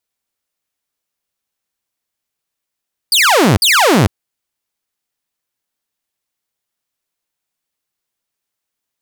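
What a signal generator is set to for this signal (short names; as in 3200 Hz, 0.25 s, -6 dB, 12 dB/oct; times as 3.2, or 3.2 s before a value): burst of laser zaps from 5000 Hz, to 83 Hz, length 0.45 s saw, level -5 dB, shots 2, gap 0.05 s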